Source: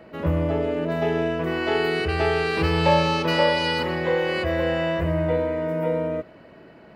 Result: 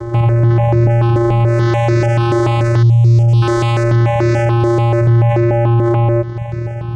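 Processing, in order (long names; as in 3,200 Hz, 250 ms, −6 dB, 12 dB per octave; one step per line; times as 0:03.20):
0:02.82–0:03.42: elliptic band-stop filter 280–4,800 Hz
in parallel at −0.5 dB: downward compressor, threshold −31 dBFS, peak gain reduction 14.5 dB
on the sum: wave folding −16.5 dBFS
channel vocoder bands 4, square 117 Hz
boost into a limiter +25 dB
step-sequenced phaser 6.9 Hz 700–3,100 Hz
level −2.5 dB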